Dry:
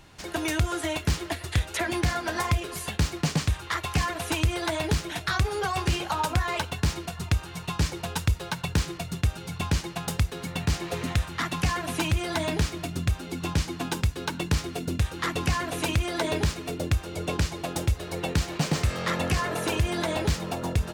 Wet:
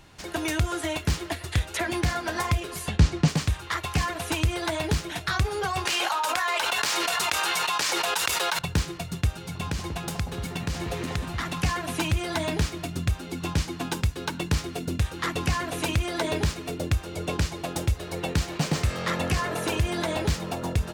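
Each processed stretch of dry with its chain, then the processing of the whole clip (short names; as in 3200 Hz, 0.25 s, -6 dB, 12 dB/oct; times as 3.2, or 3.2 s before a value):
2.88–3.28 LPF 7300 Hz + low shelf 350 Hz +7.5 dB
5.85–8.59 HPF 710 Hz + fast leveller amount 100%
9.36–11.58 compressor 3:1, threshold -26 dBFS + echo with dull and thin repeats by turns 0.188 s, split 1100 Hz, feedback 52%, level -4.5 dB
whole clip: dry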